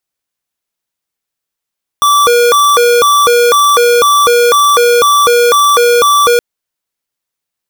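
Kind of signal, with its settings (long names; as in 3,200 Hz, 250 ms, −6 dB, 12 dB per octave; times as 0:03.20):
siren hi-lo 479–1,160 Hz 2 per second square −7.5 dBFS 4.37 s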